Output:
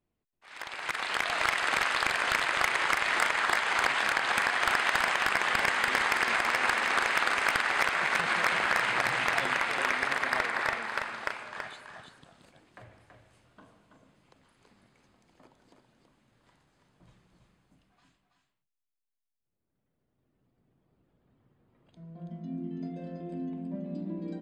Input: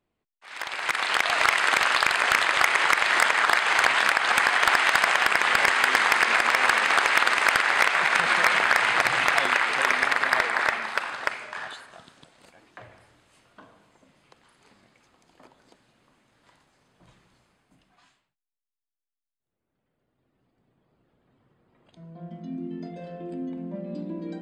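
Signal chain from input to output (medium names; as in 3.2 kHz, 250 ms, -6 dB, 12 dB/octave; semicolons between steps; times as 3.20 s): bass shelf 300 Hz +7.5 dB; on a send: delay 329 ms -6 dB; on the sum: trim -7.5 dB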